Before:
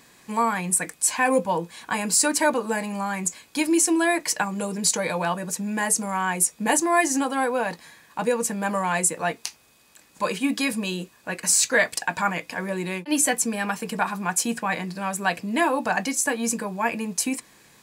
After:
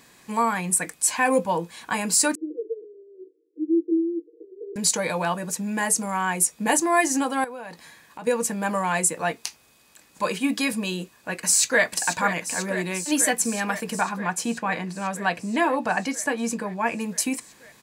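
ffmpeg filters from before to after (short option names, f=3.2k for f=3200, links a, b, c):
-filter_complex "[0:a]asettb=1/sr,asplit=3[a][b][c];[a]atrim=end=2.354[d];[b]atrim=start=2.35:end=4.76,asetpts=PTS-STARTPTS,afade=t=in:d=0.004:c=qsin,afade=t=out:st=2.406:d=0.004:c=qsin,asuperpass=centerf=380:order=12:qfactor=2.3[e];[c]atrim=start=4.756[f];[d][e]acrossfade=d=0.004:c1=hsin:c2=qsin[g];[g][f]acrossfade=d=0.004:c1=qsin:c2=hsin,asettb=1/sr,asplit=3[h][i][j];[h]atrim=end=7.444[k];[i]atrim=start=7.44:end=8.27,asetpts=PTS-STARTPTS,afade=t=in:d=0.004:c=qsin,afade=t=out:st=0.826:d=0.004:c=qsin,acompressor=threshold=-37dB:ratio=3:attack=3.2:release=140:knee=1:detection=peak[l];[j]atrim=start=8.266[m];[k][l]acrossfade=d=0.004:c1=hsin:c2=qsin[n];[n][m]acrossfade=d=0.004:c1=qsin:c2=hsin,asplit=2[o][p];[p]afade=t=in:st=11.4:d=0.01,afade=t=out:st=11.84:d=0.01,aecho=0:1:490|980|1470|1960|2450|2940|3430|3920|4410|4900|5390|5880:0.334965|0.267972|0.214378|0.171502|0.137202|0.109761|0.0878092|0.0702473|0.0561979|0.0449583|0.0359666|0.0287733[q];[o][q]amix=inputs=2:normalize=0,asettb=1/sr,asplit=3[r][s][t];[r]atrim=end=14.014[u];[s]atrim=start=14.01:end=17,asetpts=PTS-STARTPTS,afade=t=in:d=0.004:c=qsin,afade=t=out:st=2.986:d=0.004:c=qsin,lowpass=f=4k:p=1[v];[t]atrim=start=16.996[w];[u][v]acrossfade=d=0.004:c1=hsin:c2=qsin[x];[x][w]acrossfade=d=0.004:c1=qsin:c2=hsin"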